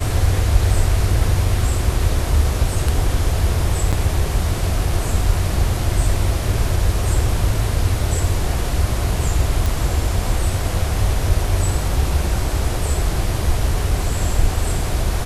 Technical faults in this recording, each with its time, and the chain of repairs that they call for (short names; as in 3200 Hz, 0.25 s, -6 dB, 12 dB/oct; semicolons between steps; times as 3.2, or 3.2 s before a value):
3.92–3.93 gap 6.8 ms
9.66 pop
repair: de-click; interpolate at 3.92, 6.8 ms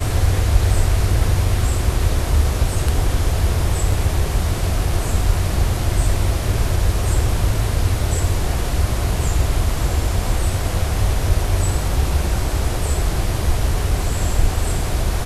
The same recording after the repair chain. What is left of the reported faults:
none